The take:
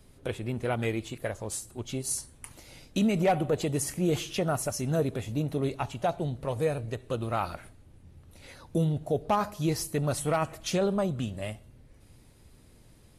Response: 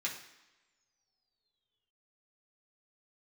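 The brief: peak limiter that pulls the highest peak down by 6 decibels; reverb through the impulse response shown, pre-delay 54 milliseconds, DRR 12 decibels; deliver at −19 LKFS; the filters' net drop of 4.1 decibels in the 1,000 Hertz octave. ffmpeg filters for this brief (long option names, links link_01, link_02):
-filter_complex "[0:a]equalizer=frequency=1000:width_type=o:gain=-6,alimiter=limit=-23dB:level=0:latency=1,asplit=2[link_01][link_02];[1:a]atrim=start_sample=2205,adelay=54[link_03];[link_02][link_03]afir=irnorm=-1:irlink=0,volume=-15dB[link_04];[link_01][link_04]amix=inputs=2:normalize=0,volume=14.5dB"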